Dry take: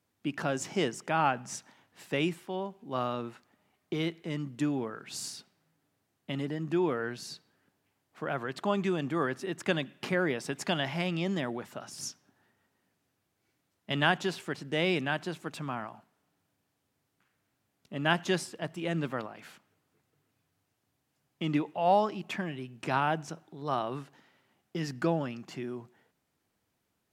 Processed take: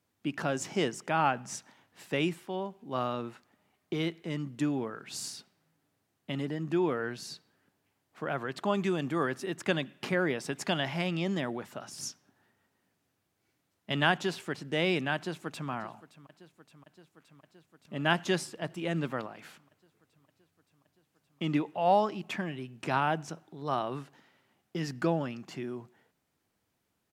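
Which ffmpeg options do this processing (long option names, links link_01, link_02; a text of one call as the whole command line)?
ffmpeg -i in.wav -filter_complex "[0:a]asettb=1/sr,asplit=3[link_01][link_02][link_03];[link_01]atrim=end=8.744[link_04];[link_02]atrim=start=8.74:end=9.55,asetpts=PTS-STARTPTS,afade=type=in:duration=0.004:curve=qsin,afade=type=out:start_time=0.806:duration=0.004:curve=qsin,highshelf=frequency=6700:gain=5[link_05];[link_03]atrim=start=9.546[link_06];[link_04][link_05]acrossfade=duration=0.004:curve1=hsin:curve2=qsin[link_07];[link_07][link_06]acrossfade=duration=0.004:curve1=qsin:curve2=hsin,asplit=2[link_08][link_09];[link_09]afade=type=in:start_time=15.15:duration=0.01,afade=type=out:start_time=15.69:duration=0.01,aecho=0:1:570|1140|1710|2280|2850|3420|3990|4560|5130|5700|6270|6840:0.141254|0.113003|0.0904024|0.0723219|0.0578575|0.046286|0.0370288|0.0296231|0.0236984|0.0189588|0.015167|0.0121336[link_10];[link_08][link_10]amix=inputs=2:normalize=0" out.wav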